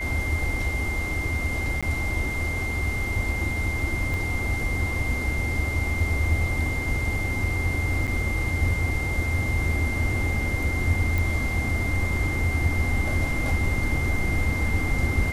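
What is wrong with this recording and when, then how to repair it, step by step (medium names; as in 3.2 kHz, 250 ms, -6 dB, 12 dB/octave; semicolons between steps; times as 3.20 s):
whine 2.1 kHz -29 dBFS
1.81–1.83 s: dropout 16 ms
4.14 s: pop
8.07–8.08 s: dropout 7.4 ms
11.18 s: pop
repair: de-click; band-stop 2.1 kHz, Q 30; interpolate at 1.81 s, 16 ms; interpolate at 8.07 s, 7.4 ms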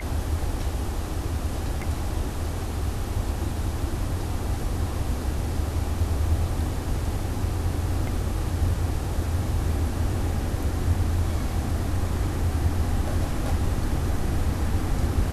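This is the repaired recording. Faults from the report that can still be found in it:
4.14 s: pop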